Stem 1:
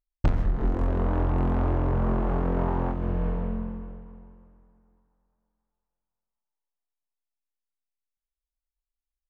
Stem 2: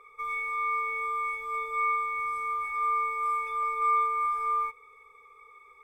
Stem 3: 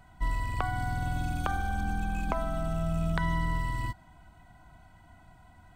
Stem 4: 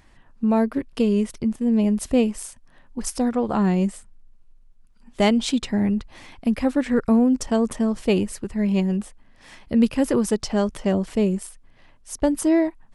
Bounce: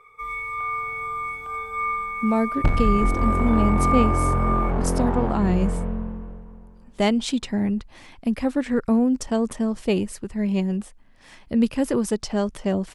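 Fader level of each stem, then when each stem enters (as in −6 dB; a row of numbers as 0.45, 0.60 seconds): +2.5, +1.5, −18.0, −2.0 decibels; 2.40, 0.00, 0.00, 1.80 seconds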